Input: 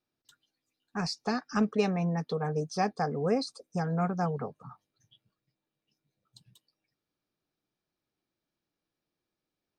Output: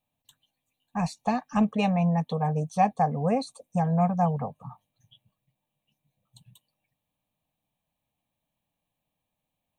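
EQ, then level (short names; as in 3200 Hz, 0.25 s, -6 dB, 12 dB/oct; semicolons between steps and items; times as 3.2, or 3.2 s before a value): bell 2000 Hz -7.5 dB 0.58 oct; fixed phaser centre 1400 Hz, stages 6; +8.5 dB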